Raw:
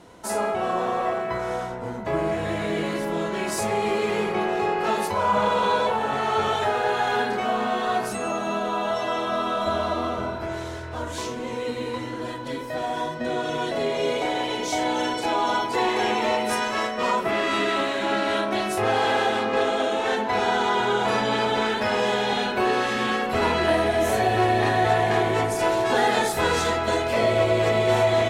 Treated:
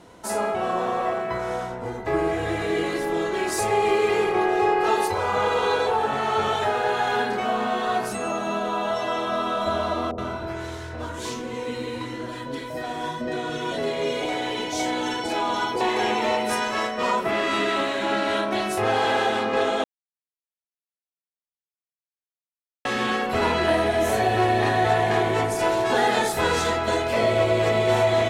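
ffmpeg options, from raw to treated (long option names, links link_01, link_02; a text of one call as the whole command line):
ffmpeg -i in.wav -filter_complex "[0:a]asettb=1/sr,asplit=3[link_01][link_02][link_03];[link_01]atrim=end=1.854[link_04];[link_02]atrim=start=1.85:end=6.07,asetpts=PTS-STARTPTS,afade=type=in:duration=0.004:curve=qsin,afade=type=out:start_time=4.216:duration=0.004:curve=qsin,aecho=1:1:2.5:0.65,atrim=end_sample=186102[link_05];[link_03]atrim=start=6.066[link_06];[link_04][link_05]acrossfade=duration=0.004:curve1=hsin:curve2=qsin[link_07];[link_07][link_06]acrossfade=duration=0.004:curve1=qsin:curve2=hsin,asettb=1/sr,asplit=3[link_08][link_09][link_10];[link_08]atrim=end=10.114[link_11];[link_09]atrim=start=10.11:end=15.81,asetpts=PTS-STARTPTS,afade=type=in:duration=0.004:curve=qsin,afade=type=out:start_time=5.696:duration=0.004:curve=qsin,acrossover=split=710[link_12][link_13];[link_13]adelay=70[link_14];[link_12][link_14]amix=inputs=2:normalize=0,atrim=end_sample=251370[link_15];[link_10]atrim=start=15.806[link_16];[link_11][link_15]acrossfade=duration=0.004:curve1=hsin:curve2=qsin[link_17];[link_17][link_16]acrossfade=duration=0.004:curve1=qsin:curve2=hsin,asplit=3[link_18][link_19][link_20];[link_18]atrim=end=19.84,asetpts=PTS-STARTPTS,afade=type=out:start_time=19.836:duration=0.004:curve=hsin[link_21];[link_19]atrim=start=19.84:end=22.85,asetpts=PTS-STARTPTS,volume=0[link_22];[link_20]atrim=start=22.85,asetpts=PTS-STARTPTS,afade=type=in:duration=0.004:curve=hsin[link_23];[link_21][link_22][link_23]concat=n=3:v=0:a=1" out.wav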